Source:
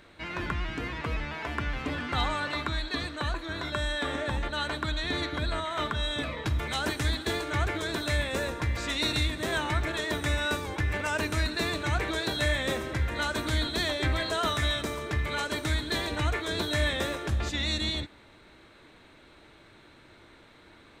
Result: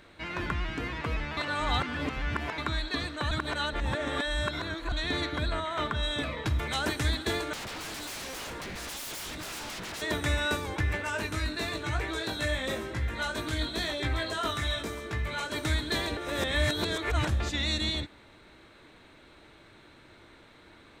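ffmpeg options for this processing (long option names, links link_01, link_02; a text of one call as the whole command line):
ffmpeg -i in.wav -filter_complex "[0:a]asettb=1/sr,asplit=3[link_01][link_02][link_03];[link_01]atrim=end=5.484[link_04];[link_02]atrim=start=5.48:end=6.03,asetpts=PTS-STARTPTS,afade=type=in:duration=0.004:curve=qsin,afade=type=out:start_time=0.546:duration=0.004:curve=qsin,highshelf=frequency=4600:gain=-5[link_05];[link_03]atrim=start=6.026[link_06];[link_04][link_05]acrossfade=duration=0.004:curve1=hsin:curve2=qsin[link_07];[link_07][link_06]acrossfade=duration=0.004:curve1=qsin:curve2=hsin,asettb=1/sr,asplit=3[link_08][link_09][link_10];[link_08]atrim=end=7.534[link_11];[link_09]atrim=start=7.53:end=10.02,asetpts=PTS-STARTPTS,afade=type=in:duration=0.004:curve=qsin,afade=type=out:start_time=2.486:duration=0.004:curve=qsin,aeval=exprs='0.02*(abs(mod(val(0)/0.02+3,4)-2)-1)':channel_layout=same[link_12];[link_10]atrim=start=10.016[link_13];[link_11][link_12]acrossfade=duration=0.004:curve1=hsin:curve2=qsin[link_14];[link_14][link_13]acrossfade=duration=0.004:curve1=qsin:curve2=hsin,asplit=3[link_15][link_16][link_17];[link_15]afade=type=out:start_time=10.95:duration=0.02[link_18];[link_16]flanger=delay=17.5:depth=2.2:speed=1,afade=type=in:start_time=10.95:duration=0.02,afade=type=out:start_time=15.54:duration=0.02[link_19];[link_17]afade=type=in:start_time=15.54:duration=0.02[link_20];[link_18][link_19][link_20]amix=inputs=3:normalize=0,asplit=7[link_21][link_22][link_23][link_24][link_25][link_26][link_27];[link_21]atrim=end=1.372[link_28];[link_22]atrim=start=1.368:end=2.582,asetpts=PTS-STARTPTS,areverse[link_29];[link_23]atrim=start=2.578:end=3.312[link_30];[link_24]atrim=start=3.308:end=4.922,asetpts=PTS-STARTPTS,areverse[link_31];[link_25]atrim=start=4.918:end=16.172[link_32];[link_26]atrim=start=16.168:end=17.272,asetpts=PTS-STARTPTS,areverse[link_33];[link_27]atrim=start=17.268[link_34];[link_28][link_29]acrossfade=duration=0.004:curve1=hsin:curve2=hsin[link_35];[link_35][link_30]acrossfade=duration=0.004:curve1=hsin:curve2=hsin[link_36];[link_36][link_31]acrossfade=duration=0.004:curve1=hsin:curve2=hsin[link_37];[link_37][link_32]acrossfade=duration=0.004:curve1=hsin:curve2=hsin[link_38];[link_38][link_33]acrossfade=duration=0.004:curve1=hsin:curve2=hsin[link_39];[link_39][link_34]acrossfade=duration=0.004:curve1=hsin:curve2=hsin" out.wav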